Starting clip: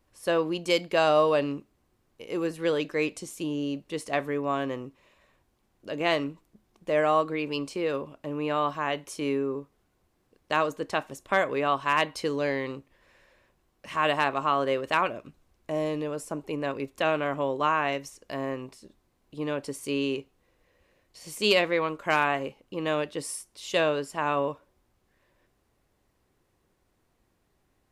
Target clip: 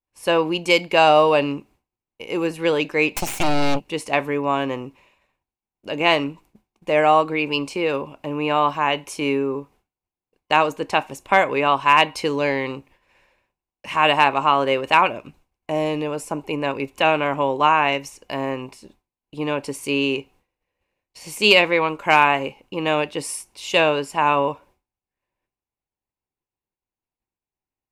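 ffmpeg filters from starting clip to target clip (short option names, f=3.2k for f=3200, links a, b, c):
-filter_complex "[0:a]asplit=3[a][b][c];[a]afade=t=out:st=3.14:d=0.02[d];[b]aeval=exprs='0.0841*(cos(1*acos(clip(val(0)/0.0841,-1,1)))-cos(1*PI/2))+0.0299*(cos(3*acos(clip(val(0)/0.0841,-1,1)))-cos(3*PI/2))+0.0376*(cos(4*acos(clip(val(0)/0.0841,-1,1)))-cos(4*PI/2))+0.0299*(cos(5*acos(clip(val(0)/0.0841,-1,1)))-cos(5*PI/2))+0.0266*(cos(8*acos(clip(val(0)/0.0841,-1,1)))-cos(8*PI/2))':c=same,afade=t=in:st=3.14:d=0.02,afade=t=out:st=3.79:d=0.02[e];[c]afade=t=in:st=3.79:d=0.02[f];[d][e][f]amix=inputs=3:normalize=0,superequalizer=9b=2:12b=2,agate=range=-33dB:threshold=-52dB:ratio=3:detection=peak,volume=6dB"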